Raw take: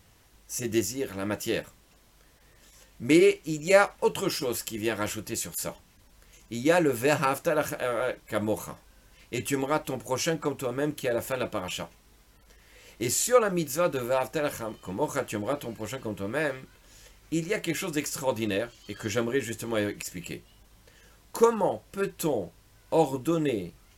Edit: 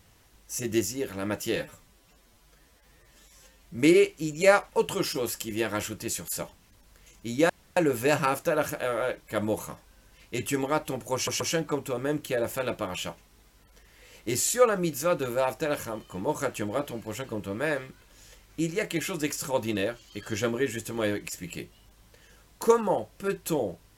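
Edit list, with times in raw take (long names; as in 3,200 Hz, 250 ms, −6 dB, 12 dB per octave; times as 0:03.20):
0:01.56–0:03.03: time-stretch 1.5×
0:06.76: splice in room tone 0.27 s
0:10.14: stutter 0.13 s, 3 plays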